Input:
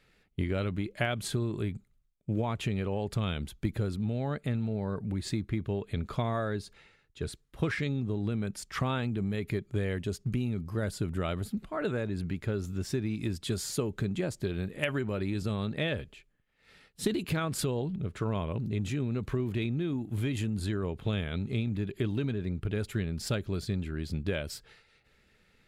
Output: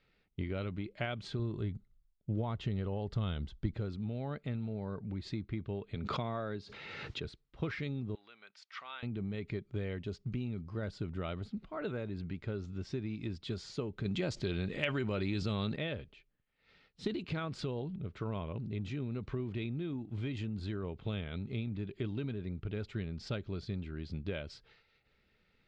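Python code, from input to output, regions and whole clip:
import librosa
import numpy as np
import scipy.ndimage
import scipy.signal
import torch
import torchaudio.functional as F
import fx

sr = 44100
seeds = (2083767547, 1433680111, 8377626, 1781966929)

y = fx.chain(x, sr, fx.low_shelf(hz=85.0, db=10.0),
    fx.notch(hz=2400.0, q=5.7), at=(1.39, 3.74))
y = fx.chain(y, sr, fx.highpass(hz=100.0, slope=12),
    fx.pre_swell(db_per_s=24.0), at=(5.95, 7.25))
y = fx.chain(y, sr, fx.highpass(hz=1300.0, slope=12),
    fx.air_absorb(metres=61.0), at=(8.15, 9.03))
y = fx.chain(y, sr, fx.high_shelf(hz=2400.0, db=8.5),
    fx.env_flatten(amount_pct=50), at=(14.05, 15.76))
y = scipy.signal.sosfilt(scipy.signal.butter(4, 5100.0, 'lowpass', fs=sr, output='sos'), y)
y = fx.notch(y, sr, hz=1700.0, q=15.0)
y = y * librosa.db_to_amplitude(-6.5)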